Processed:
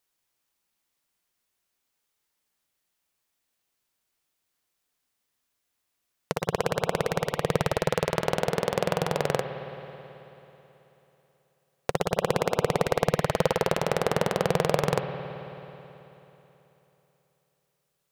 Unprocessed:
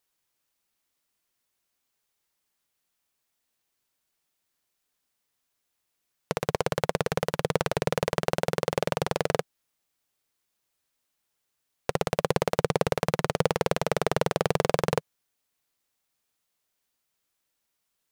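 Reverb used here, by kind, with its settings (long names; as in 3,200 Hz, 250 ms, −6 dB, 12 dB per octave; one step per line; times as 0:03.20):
spring reverb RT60 3.4 s, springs 54 ms, chirp 65 ms, DRR 6.5 dB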